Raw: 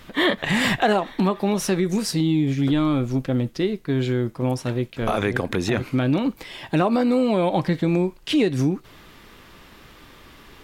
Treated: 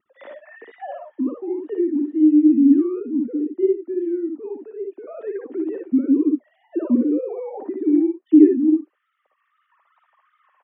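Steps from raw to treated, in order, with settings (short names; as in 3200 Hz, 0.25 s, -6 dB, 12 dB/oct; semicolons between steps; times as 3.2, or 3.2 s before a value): sine-wave speech; wow and flutter 110 cents; small resonant body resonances 240/1800 Hz, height 10 dB, ringing for 45 ms; band-pass sweep 320 Hz -> 970 Hz, 8.57–9.75; on a send: tapped delay 58/68/71 ms -4/-18.5/-9 dB; on the sum: gain -2 dB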